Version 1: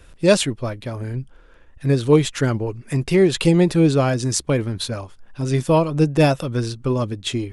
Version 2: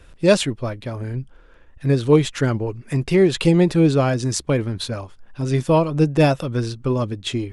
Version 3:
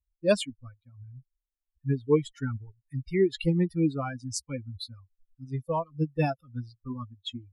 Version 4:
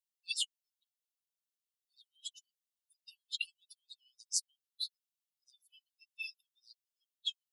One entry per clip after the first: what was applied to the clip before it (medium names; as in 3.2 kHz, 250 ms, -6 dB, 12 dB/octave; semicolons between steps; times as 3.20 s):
treble shelf 7.4 kHz -6.5 dB
expander on every frequency bin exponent 3; trim -5 dB
brick-wall FIR high-pass 2.6 kHz; trim +1 dB